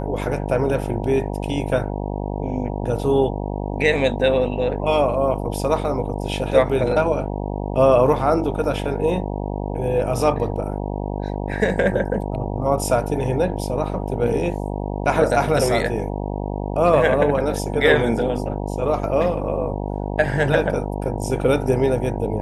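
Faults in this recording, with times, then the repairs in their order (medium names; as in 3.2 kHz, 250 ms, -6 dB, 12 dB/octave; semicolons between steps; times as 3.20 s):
buzz 50 Hz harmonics 19 -26 dBFS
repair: de-hum 50 Hz, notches 19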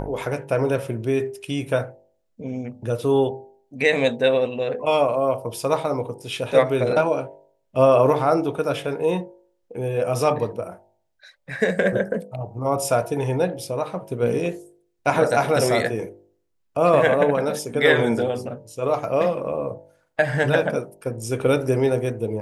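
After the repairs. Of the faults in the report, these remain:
nothing left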